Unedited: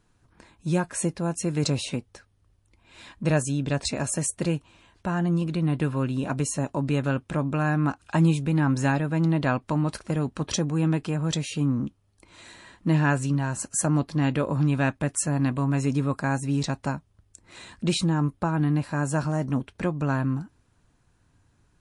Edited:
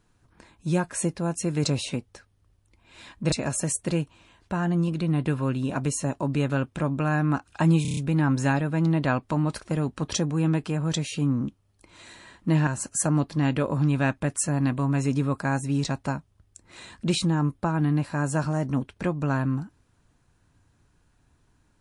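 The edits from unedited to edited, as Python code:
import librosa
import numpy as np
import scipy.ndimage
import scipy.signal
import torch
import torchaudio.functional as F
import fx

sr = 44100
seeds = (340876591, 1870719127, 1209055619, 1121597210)

y = fx.edit(x, sr, fx.cut(start_s=3.32, length_s=0.54),
    fx.stutter(start_s=8.36, slice_s=0.03, count=6),
    fx.cut(start_s=13.06, length_s=0.4), tone=tone)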